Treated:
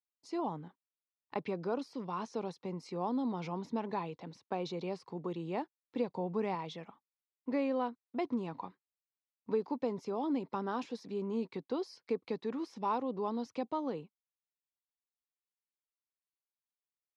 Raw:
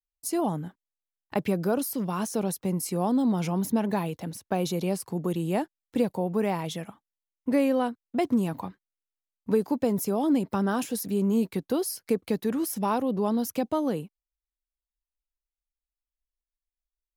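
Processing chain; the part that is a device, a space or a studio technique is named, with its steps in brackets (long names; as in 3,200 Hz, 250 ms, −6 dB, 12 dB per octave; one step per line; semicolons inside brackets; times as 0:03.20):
0:06.09–0:06.55: bass and treble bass +6 dB, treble +4 dB
kitchen radio (loudspeaker in its box 190–4,600 Hz, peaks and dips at 200 Hz −6 dB, 310 Hz −3 dB, 630 Hz −5 dB, 990 Hz +4 dB, 1,600 Hz −6 dB, 3,000 Hz −5 dB)
level −6.5 dB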